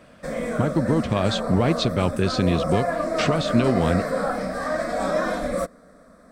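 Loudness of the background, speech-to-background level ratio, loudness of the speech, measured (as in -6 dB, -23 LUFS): -26.5 LUFS, 3.0 dB, -23.5 LUFS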